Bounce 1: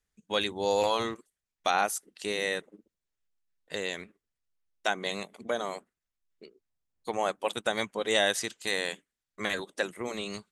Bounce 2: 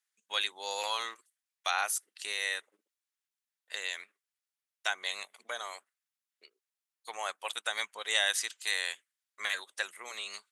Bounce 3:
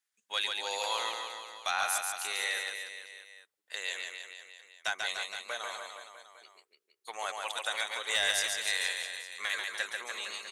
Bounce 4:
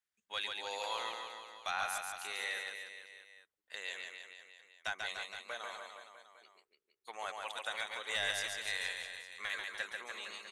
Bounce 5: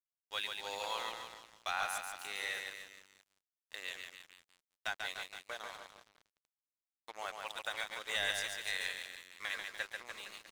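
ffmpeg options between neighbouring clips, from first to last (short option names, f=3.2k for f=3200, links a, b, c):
-af "highpass=1.2k,equalizer=f=10k:w=3.9:g=4"
-af "asoftclip=type=tanh:threshold=-18dB,aecho=1:1:140|294|463.4|649.7|854.7:0.631|0.398|0.251|0.158|0.1"
-af "bass=f=250:g=8,treble=f=4k:g=-6,volume=-5dB"
-af "aeval=exprs='sgn(val(0))*max(abs(val(0))-0.00335,0)':c=same,volume=1.5dB"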